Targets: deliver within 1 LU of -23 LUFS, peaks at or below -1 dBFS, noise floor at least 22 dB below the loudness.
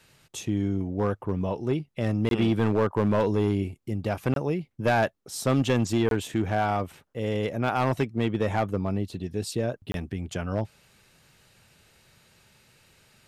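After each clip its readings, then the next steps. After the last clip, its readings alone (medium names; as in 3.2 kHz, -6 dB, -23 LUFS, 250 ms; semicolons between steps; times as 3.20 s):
clipped samples 1.1%; clipping level -16.5 dBFS; dropouts 4; longest dropout 22 ms; loudness -27.5 LUFS; peak level -16.5 dBFS; loudness target -23.0 LUFS
-> clip repair -16.5 dBFS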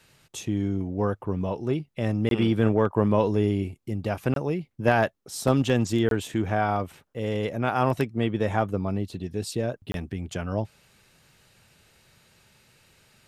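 clipped samples 0.0%; dropouts 4; longest dropout 22 ms
-> interpolate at 2.29/4.34/6.09/9.92 s, 22 ms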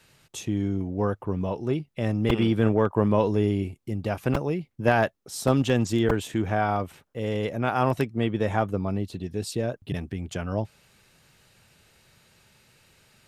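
dropouts 0; loudness -26.5 LUFS; peak level -7.5 dBFS; loudness target -23.0 LUFS
-> trim +3.5 dB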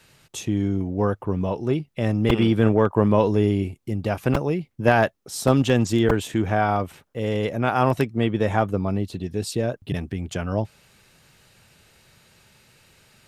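loudness -23.0 LUFS; peak level -4.0 dBFS; noise floor -62 dBFS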